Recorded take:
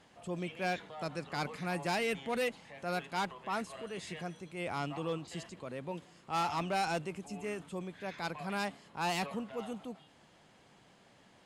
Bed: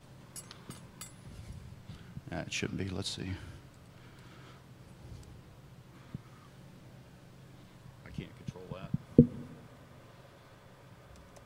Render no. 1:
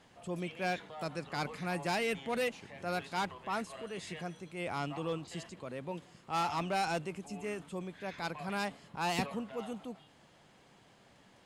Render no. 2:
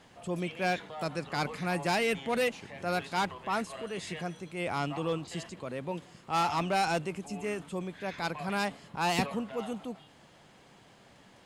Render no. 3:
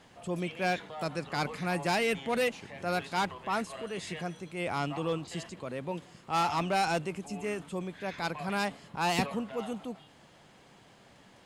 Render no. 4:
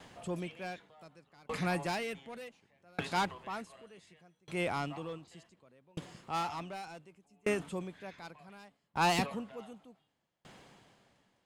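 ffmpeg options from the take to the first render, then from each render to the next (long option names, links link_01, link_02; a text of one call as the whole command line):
ffmpeg -i in.wav -i bed.wav -filter_complex "[1:a]volume=-18.5dB[link_01];[0:a][link_01]amix=inputs=2:normalize=0" out.wav
ffmpeg -i in.wav -af "volume=4.5dB" out.wav
ffmpeg -i in.wav -af anull out.wav
ffmpeg -i in.wav -filter_complex "[0:a]asplit=2[link_01][link_02];[link_02]volume=27.5dB,asoftclip=hard,volume=-27.5dB,volume=-3.5dB[link_03];[link_01][link_03]amix=inputs=2:normalize=0,aeval=exprs='val(0)*pow(10,-35*if(lt(mod(0.67*n/s,1),2*abs(0.67)/1000),1-mod(0.67*n/s,1)/(2*abs(0.67)/1000),(mod(0.67*n/s,1)-2*abs(0.67)/1000)/(1-2*abs(0.67)/1000))/20)':channel_layout=same" out.wav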